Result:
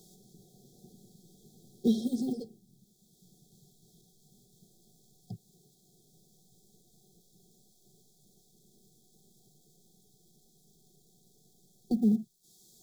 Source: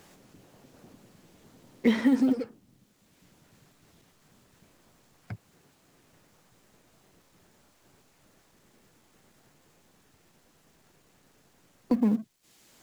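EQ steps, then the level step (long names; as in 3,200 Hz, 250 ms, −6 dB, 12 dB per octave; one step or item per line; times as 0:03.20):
linear-phase brick-wall band-stop 780–3,200 Hz
parametric band 500 Hz −14.5 dB 0.22 octaves
phaser with its sweep stopped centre 420 Hz, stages 8
+2.0 dB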